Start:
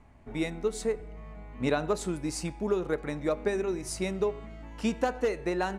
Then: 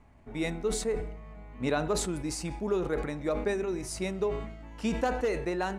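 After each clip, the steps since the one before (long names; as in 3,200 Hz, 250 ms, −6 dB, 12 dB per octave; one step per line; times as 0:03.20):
level that may fall only so fast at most 61 dB per second
level −2 dB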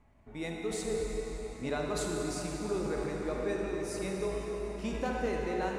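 convolution reverb RT60 5.4 s, pre-delay 29 ms, DRR −1 dB
level −6.5 dB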